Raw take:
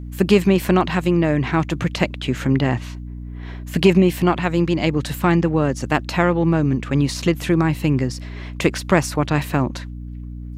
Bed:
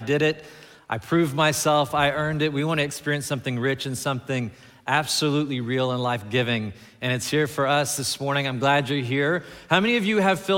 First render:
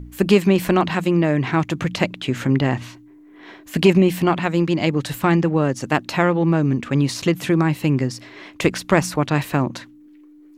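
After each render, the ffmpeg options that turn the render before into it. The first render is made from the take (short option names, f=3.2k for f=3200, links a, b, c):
-af "bandreject=f=60:t=h:w=4,bandreject=f=120:t=h:w=4,bandreject=f=180:t=h:w=4,bandreject=f=240:t=h:w=4"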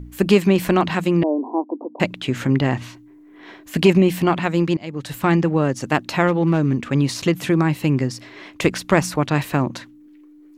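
-filter_complex "[0:a]asettb=1/sr,asplit=3[a][b][c];[a]atrim=end=1.234[d];[b]atrim=start=1.23:end=2,asetpts=PTS-STARTPTS,afade=t=in:d=0.004:c=qsin,afade=t=out:st=0.766:d=0.004:c=qsin,asuperpass=centerf=490:order=20:qfactor=0.64[e];[c]atrim=start=1.996[f];[d][e]acrossfade=d=0.004:c1=hsin:c2=qsin[g];[g][f]acrossfade=d=0.004:c1=qsin:c2=hsin,asplit=3[h][i][j];[h]afade=t=out:st=6.27:d=0.02[k];[i]volume=11.5dB,asoftclip=hard,volume=-11.5dB,afade=t=in:st=6.27:d=0.02,afade=t=out:st=6.86:d=0.02[l];[j]afade=t=in:st=6.86:d=0.02[m];[k][l][m]amix=inputs=3:normalize=0,asplit=2[n][o];[n]atrim=end=4.77,asetpts=PTS-STARTPTS,afade=t=out:st=4.766:d=0.004:c=hsin:silence=0.0707946[p];[o]atrim=start=4.77,asetpts=PTS-STARTPTS,afade=t=in:d=0.53:silence=0.0707946[q];[p][q]concat=n=2:v=0:a=1"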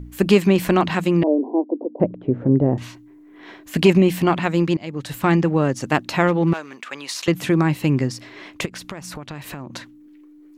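-filter_complex "[0:a]asettb=1/sr,asplit=3[a][b][c];[a]atrim=end=1.274[d];[b]atrim=start=1.27:end=2.78,asetpts=PTS-STARTPTS,afade=t=in:d=0.004:c=qsin,afade=t=out:st=1.506:d=0.004:c=qsin,lowpass=f=510:t=q:w=1.8[e];[c]atrim=start=2.776[f];[d][e]acrossfade=d=0.004:c1=hsin:c2=qsin[g];[g][f]acrossfade=d=0.004:c1=qsin:c2=hsin,asettb=1/sr,asplit=3[h][i][j];[h]atrim=end=6.534[k];[i]atrim=start=6.53:end=7.28,asetpts=PTS-STARTPTS,afade=t=in:d=0.004:c=qsin,afade=t=out:st=0.746:d=0.004:c=qsin,highpass=880[l];[j]atrim=start=7.276[m];[k][l]acrossfade=d=0.004:c1=hsin:c2=qsin[n];[n][m]acrossfade=d=0.004:c1=qsin:c2=hsin,asplit=3[o][p][q];[o]afade=t=out:st=8.64:d=0.02[r];[p]acompressor=threshold=-29dB:ratio=16:attack=3.2:release=140:knee=1:detection=peak,afade=t=in:st=8.64:d=0.02,afade=t=out:st=9.74:d=0.02[s];[q]afade=t=in:st=9.74:d=0.02[t];[r][s][t]amix=inputs=3:normalize=0"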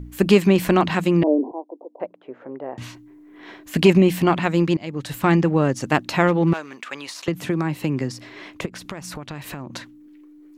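-filter_complex "[0:a]asettb=1/sr,asplit=3[a][b][c];[a]atrim=end=1.514[d];[b]atrim=start=1.51:end=2.78,asetpts=PTS-STARTPTS,afade=t=in:d=0.004:c=qsin,afade=t=out:st=1.266:d=0.004:c=qsin,highpass=850[e];[c]atrim=start=2.776[f];[d][e]acrossfade=d=0.004:c1=hsin:c2=qsin[g];[g][f]acrossfade=d=0.004:c1=qsin:c2=hsin,asettb=1/sr,asplit=3[h][i][j];[h]atrim=end=7.074[k];[i]atrim=start=7.07:end=8.86,asetpts=PTS-STARTPTS,afade=t=in:d=0.004:c=qsin,afade=t=out:st=1.786:d=0.004:c=qsin,acrossover=split=230|1400[l][m][n];[l]acompressor=threshold=-27dB:ratio=4[o];[m]acompressor=threshold=-23dB:ratio=4[p];[n]acompressor=threshold=-35dB:ratio=4[q];[o][p][q]amix=inputs=3:normalize=0[r];[j]atrim=start=8.856[s];[k][r]acrossfade=d=0.004:c1=hsin:c2=qsin[t];[t][s]acrossfade=d=0.004:c1=qsin:c2=hsin"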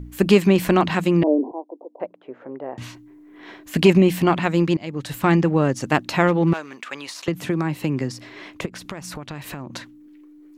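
-af anull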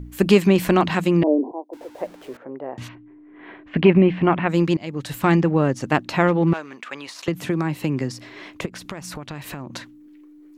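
-filter_complex "[0:a]asettb=1/sr,asplit=3[a][b][c];[a]atrim=end=1.734[d];[b]atrim=start=1.73:end=2.37,asetpts=PTS-STARTPTS,afade=t=in:d=0.004:c=qsin,afade=t=out:st=0.636:d=0.004:c=qsin,aeval=exprs='val(0)+0.5*0.00891*sgn(val(0))':c=same[e];[c]atrim=start=2.366[f];[d][e]acrossfade=d=0.004:c1=hsin:c2=qsin[g];[g][f]acrossfade=d=0.004:c1=qsin:c2=hsin,asplit=3[h][i][j];[h]afade=t=out:st=2.87:d=0.02[k];[i]lowpass=f=2.7k:w=0.5412,lowpass=f=2.7k:w=1.3066,afade=t=in:st=2.87:d=0.02,afade=t=out:st=4.48:d=0.02[l];[j]afade=t=in:st=4.48:d=0.02[m];[k][l][m]amix=inputs=3:normalize=0,asettb=1/sr,asplit=3[n][o][p];[n]atrim=end=5.404[q];[o]atrim=start=5.4:end=7.19,asetpts=PTS-STARTPTS,afade=t=in:d=0.004:c=qsin,afade=t=out:st=1.786:d=0.004:c=qsin,highshelf=f=4.4k:g=-6.5[r];[p]atrim=start=7.186[s];[q][r]acrossfade=d=0.004:c1=hsin:c2=qsin[t];[t][s]acrossfade=d=0.004:c1=qsin:c2=hsin"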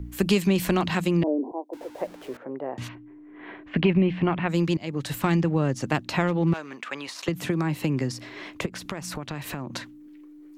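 -filter_complex "[0:a]acrossover=split=150|3000[a][b][c];[b]acompressor=threshold=-25dB:ratio=2.5[d];[a][d][c]amix=inputs=3:normalize=0"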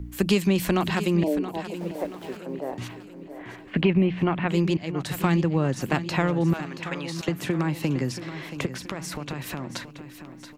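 -af "aecho=1:1:678|1356|2034|2712|3390:0.251|0.118|0.0555|0.0261|0.0123"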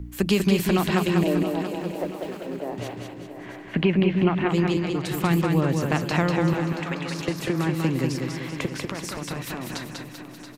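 -af "aecho=1:1:194|388|582|776|970|1164:0.631|0.29|0.134|0.0614|0.0283|0.013"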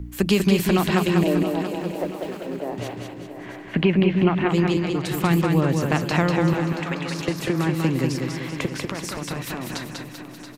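-af "volume=2dB"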